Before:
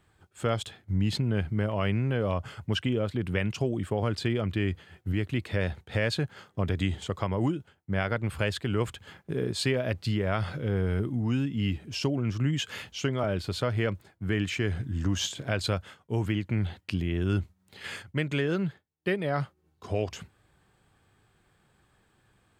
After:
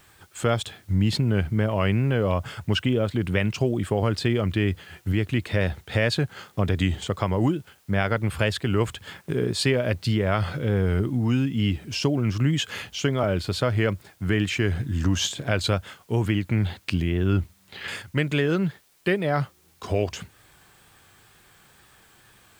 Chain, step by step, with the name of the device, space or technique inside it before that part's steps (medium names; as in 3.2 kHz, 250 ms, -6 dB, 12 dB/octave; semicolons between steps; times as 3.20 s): 17.09–17.88 s: distance through air 140 m; noise-reduction cassette on a plain deck (tape noise reduction on one side only encoder only; wow and flutter; white noise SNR 37 dB); trim +5 dB